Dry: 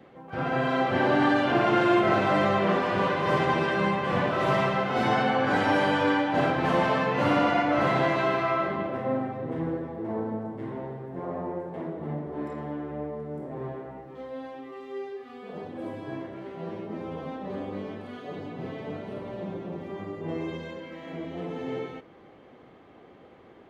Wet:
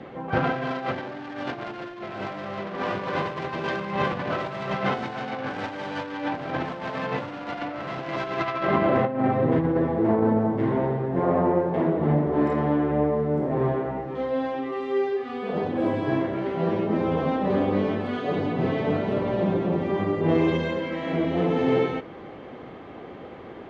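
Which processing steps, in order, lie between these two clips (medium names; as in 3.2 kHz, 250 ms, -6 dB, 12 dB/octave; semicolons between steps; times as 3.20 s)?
self-modulated delay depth 0.22 ms; distance through air 81 m; compressor with a negative ratio -31 dBFS, ratio -0.5; trim +7.5 dB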